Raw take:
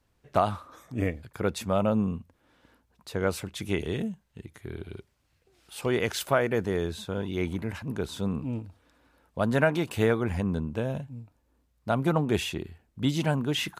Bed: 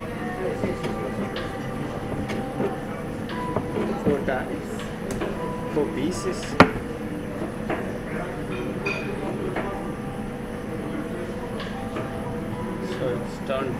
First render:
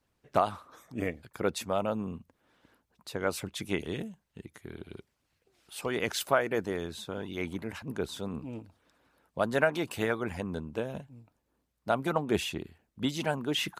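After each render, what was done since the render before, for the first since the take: harmonic-percussive split harmonic -9 dB; low shelf 83 Hz -6.5 dB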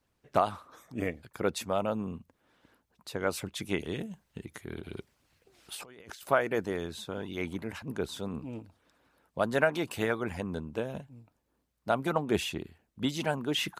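4.06–6.23 negative-ratio compressor -45 dBFS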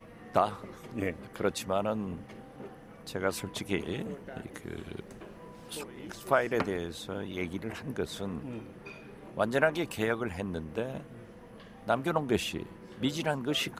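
add bed -19.5 dB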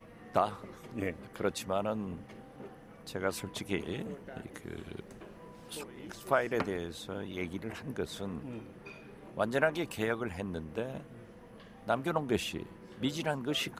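gain -2.5 dB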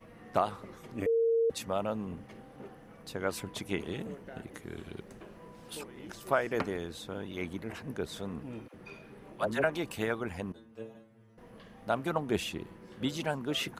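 1.06–1.5 bleep 458 Hz -23.5 dBFS; 8.68–9.64 dispersion lows, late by 63 ms, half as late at 520 Hz; 10.52–11.38 metallic resonator 110 Hz, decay 0.44 s, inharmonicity 0.002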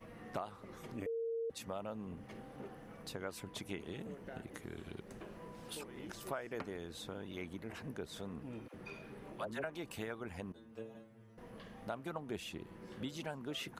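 compressor 2.5:1, threshold -44 dBFS, peak gain reduction 14.5 dB

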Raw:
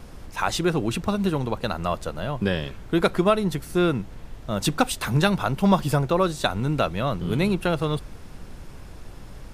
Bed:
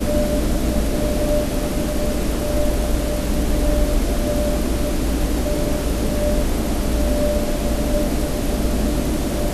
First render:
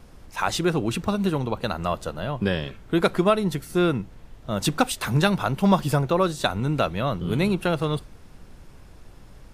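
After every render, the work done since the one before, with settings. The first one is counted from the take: noise print and reduce 6 dB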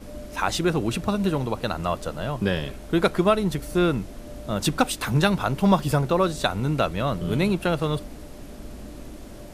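add bed -20 dB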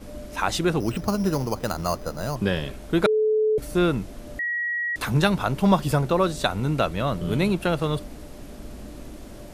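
0.8–2.36 careless resampling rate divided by 8×, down filtered, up hold; 3.06–3.58 bleep 432 Hz -17.5 dBFS; 4.39–4.96 bleep 1910 Hz -23.5 dBFS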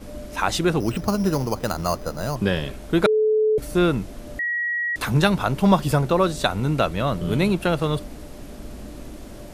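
gain +2 dB

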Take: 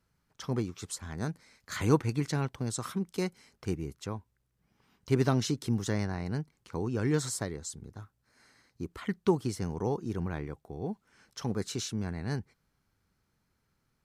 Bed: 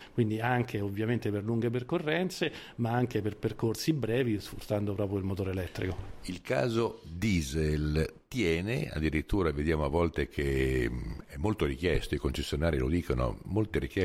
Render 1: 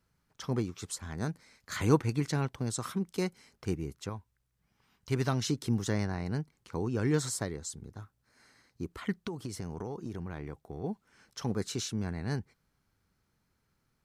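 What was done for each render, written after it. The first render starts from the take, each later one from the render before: 4.09–5.46 bell 320 Hz -6 dB 2.3 oct; 9.17–10.84 compressor 10:1, threshold -33 dBFS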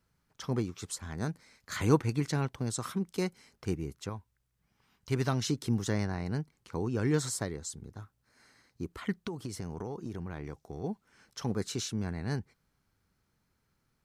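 10.44–10.88 bell 5800 Hz +10.5 dB 0.75 oct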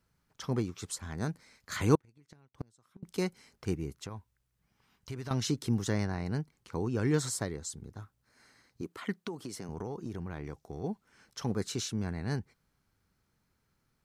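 1.95–3.03 flipped gate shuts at -25 dBFS, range -32 dB; 3.9–5.31 compressor, threshold -36 dBFS; 8.81–9.69 HPF 190 Hz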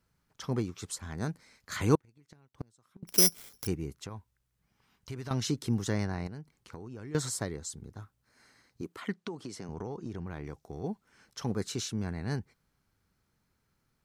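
3.07–3.67 careless resampling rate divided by 8×, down none, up zero stuff; 6.27–7.15 compressor, threshold -40 dBFS; 9.09–10.27 LPF 7600 Hz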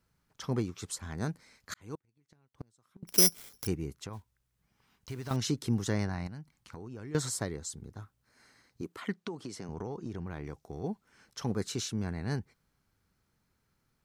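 1.74–3.15 fade in; 4.13–5.38 block floating point 5-bit; 6.09–6.76 bell 420 Hz -11 dB 0.55 oct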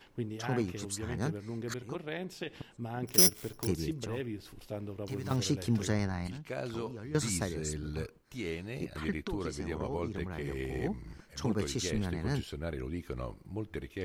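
add bed -9 dB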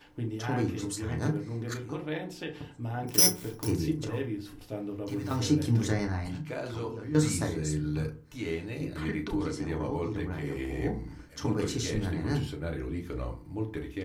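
doubler 34 ms -11.5 dB; FDN reverb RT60 0.39 s, low-frequency decay 1.35×, high-frequency decay 0.45×, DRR 2.5 dB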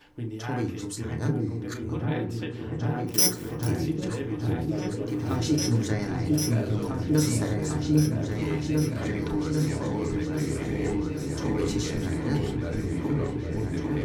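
repeats that get brighter 0.799 s, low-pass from 400 Hz, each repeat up 2 oct, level 0 dB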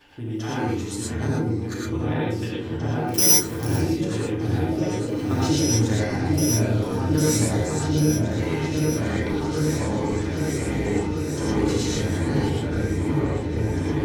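non-linear reverb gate 0.14 s rising, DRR -4.5 dB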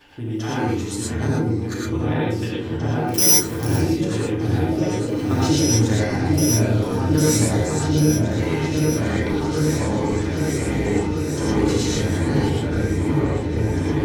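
gain +3 dB; limiter -2 dBFS, peak gain reduction 2.5 dB

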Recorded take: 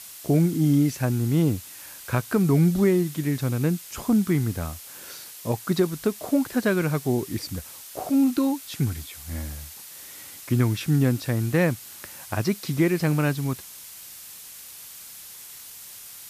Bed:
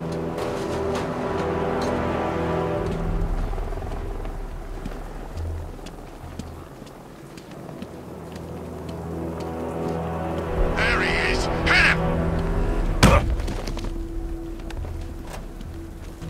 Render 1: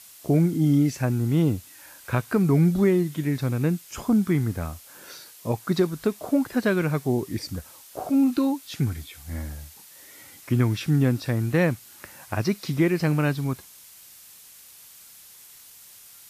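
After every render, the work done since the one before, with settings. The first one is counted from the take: noise print and reduce 6 dB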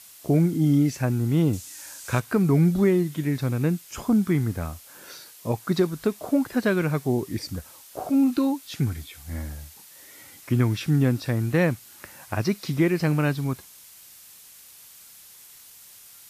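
1.53–2.2 bell 6800 Hz +11.5 dB 1.4 oct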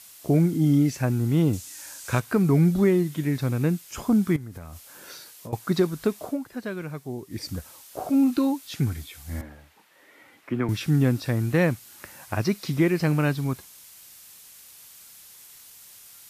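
4.36–5.53 compressor 8:1, threshold -34 dBFS; 6.22–7.45 dip -10 dB, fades 0.16 s; 9.41–10.69 three-band isolator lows -14 dB, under 210 Hz, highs -19 dB, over 2900 Hz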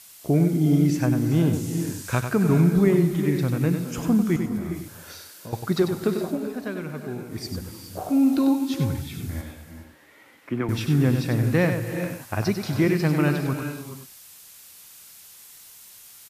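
on a send: echo 96 ms -7.5 dB; on the sum: non-linear reverb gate 0.45 s rising, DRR 8 dB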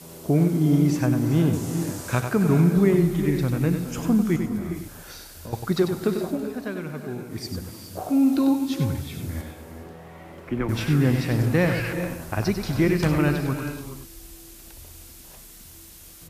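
add bed -16 dB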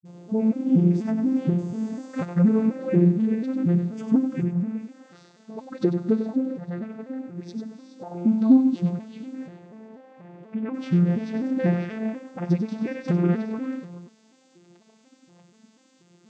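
arpeggiated vocoder major triad, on F3, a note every 0.242 s; dispersion highs, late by 48 ms, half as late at 310 Hz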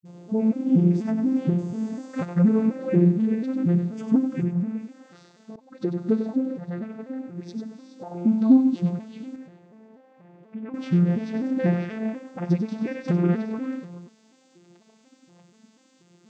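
5.56–6.14 fade in, from -20 dB; 9.36–10.74 gain -6 dB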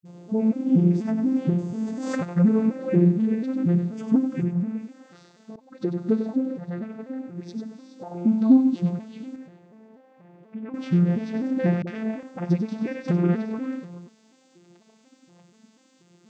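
1.86–2.34 backwards sustainer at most 31 dB/s; 11.82–12.23 dispersion highs, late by 50 ms, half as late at 370 Hz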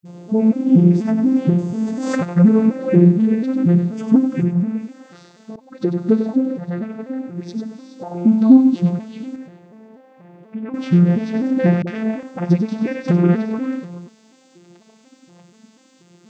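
gain +7 dB; limiter -1 dBFS, peak gain reduction 1 dB

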